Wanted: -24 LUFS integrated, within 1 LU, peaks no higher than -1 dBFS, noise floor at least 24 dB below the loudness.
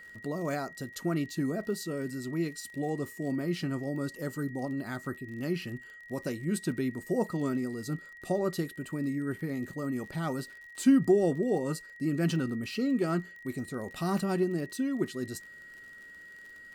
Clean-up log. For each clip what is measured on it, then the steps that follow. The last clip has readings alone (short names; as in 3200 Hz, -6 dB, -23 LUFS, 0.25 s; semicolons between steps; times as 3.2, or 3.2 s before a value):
ticks 49/s; steady tone 1900 Hz; tone level -47 dBFS; loudness -32.0 LUFS; peak -13.0 dBFS; loudness target -24.0 LUFS
-> de-click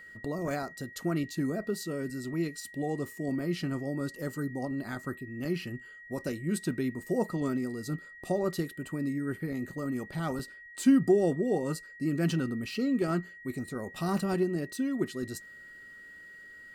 ticks 1.2/s; steady tone 1900 Hz; tone level -47 dBFS
-> notch 1900 Hz, Q 30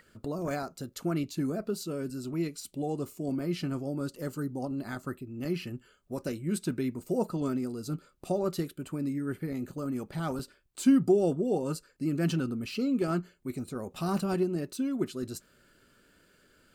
steady tone none; loudness -32.5 LUFS; peak -13.0 dBFS; loudness target -24.0 LUFS
-> gain +8.5 dB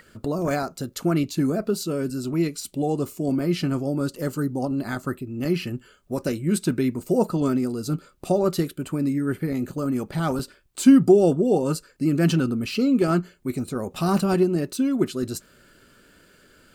loudness -24.0 LUFS; peak -4.5 dBFS; noise floor -56 dBFS